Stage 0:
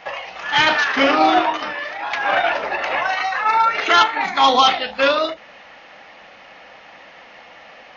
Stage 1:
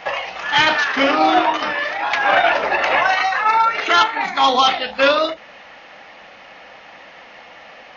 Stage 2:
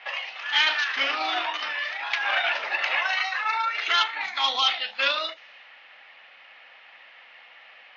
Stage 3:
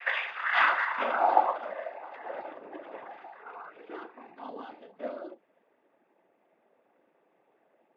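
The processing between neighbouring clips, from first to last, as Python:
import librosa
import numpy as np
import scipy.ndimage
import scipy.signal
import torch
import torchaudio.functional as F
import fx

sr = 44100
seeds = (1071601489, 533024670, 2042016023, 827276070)

y1 = fx.rider(x, sr, range_db=4, speed_s=0.5)
y1 = F.gain(torch.from_numpy(y1), 1.5).numpy()
y2 = fx.env_lowpass(y1, sr, base_hz=2800.0, full_db=-16.0)
y2 = fx.bandpass_q(y2, sr, hz=3200.0, q=0.97)
y2 = F.gain(torch.from_numpy(y2), -3.0).numpy()
y3 = fx.filter_sweep_lowpass(y2, sr, from_hz=1700.0, to_hz=360.0, start_s=0.17, end_s=2.55, q=2.7)
y3 = fx.noise_vocoder(y3, sr, seeds[0], bands=16)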